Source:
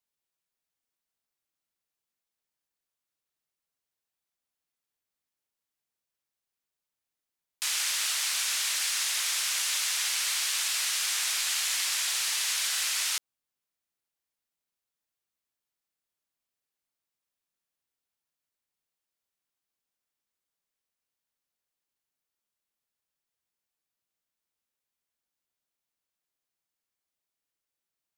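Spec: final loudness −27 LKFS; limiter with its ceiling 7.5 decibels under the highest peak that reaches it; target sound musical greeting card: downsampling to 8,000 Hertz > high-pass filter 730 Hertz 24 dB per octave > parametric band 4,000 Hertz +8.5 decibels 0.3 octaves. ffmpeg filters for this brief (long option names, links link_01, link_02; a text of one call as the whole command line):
ffmpeg -i in.wav -af "alimiter=limit=-22.5dB:level=0:latency=1,aresample=8000,aresample=44100,highpass=frequency=730:width=0.5412,highpass=frequency=730:width=1.3066,equalizer=frequency=4000:width_type=o:width=0.3:gain=8.5,volume=7dB" out.wav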